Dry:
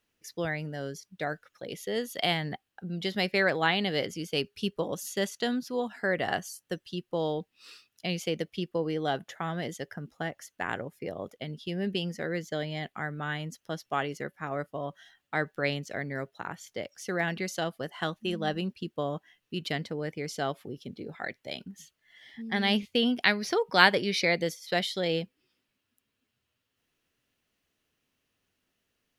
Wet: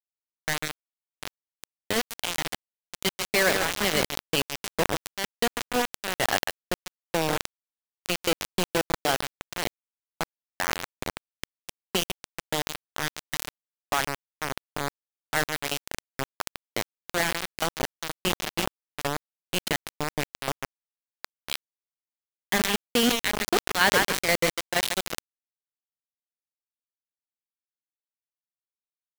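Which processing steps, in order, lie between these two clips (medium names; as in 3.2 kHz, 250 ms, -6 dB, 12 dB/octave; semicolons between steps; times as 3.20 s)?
median filter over 3 samples; square tremolo 2.1 Hz, depth 60%, duty 50%; on a send: feedback echo behind a low-pass 145 ms, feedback 31%, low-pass 3.4 kHz, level -6.5 dB; on the sum: spectral noise reduction 22 dB; in parallel at +2.5 dB: compression 8:1, threshold -37 dBFS, peak gain reduction 22 dB; on the sum: high-pass 50 Hz 6 dB/octave; bit crusher 4-bit; loudness maximiser +6 dB; decay stretcher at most 100 dB/s; trim -5.5 dB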